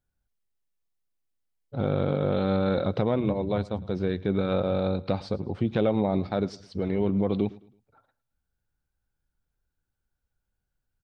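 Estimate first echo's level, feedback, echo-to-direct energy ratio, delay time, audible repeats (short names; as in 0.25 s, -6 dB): -21.0 dB, 35%, -20.5 dB, 0.108 s, 2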